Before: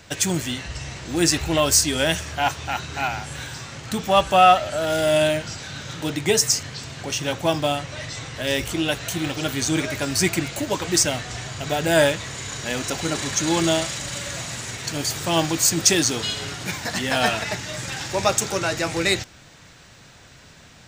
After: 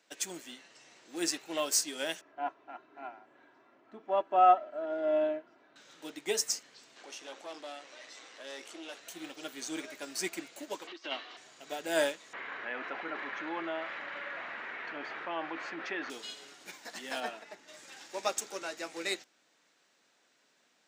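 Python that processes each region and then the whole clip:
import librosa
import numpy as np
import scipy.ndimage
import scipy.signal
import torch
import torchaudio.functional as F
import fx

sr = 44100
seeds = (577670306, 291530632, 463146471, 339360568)

y = fx.chain(x, sr, fx.lowpass(hz=1200.0, slope=12),
    fx.comb(ms=3.0, depth=0.54), at=(2.21, 5.76))
y = fx.chain(y, sr, fx.tube_stage(drive_db=22.0, bias=0.65),
    fx.bandpass_edges(low_hz=290.0, high_hz=8000.0),
    fx.env_flatten(amount_pct=50), at=(6.96, 9.0))
y = fx.chain(y, sr, fx.notch(hz=2600.0, q=13.0),
    fx.over_compress(threshold_db=-25.0, ratio=-1.0),
    fx.cabinet(low_hz=290.0, low_slope=24, high_hz=4300.0, hz=(300.0, 490.0, 1100.0, 2800.0, 4000.0), db=(4, -3, 8, 9, 4)), at=(10.87, 11.37))
y = fx.chain(y, sr, fx.lowpass(hz=1900.0, slope=24),
    fx.tilt_shelf(db=-8.5, hz=900.0),
    fx.env_flatten(amount_pct=70), at=(12.33, 16.1))
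y = fx.chain(y, sr, fx.highpass(hz=130.0, slope=12),
    fx.high_shelf(hz=2100.0, db=-9.5), at=(17.2, 17.68))
y = scipy.signal.sosfilt(scipy.signal.butter(4, 260.0, 'highpass', fs=sr, output='sos'), y)
y = fx.upward_expand(y, sr, threshold_db=-34.0, expansion=1.5)
y = y * librosa.db_to_amplitude(-8.5)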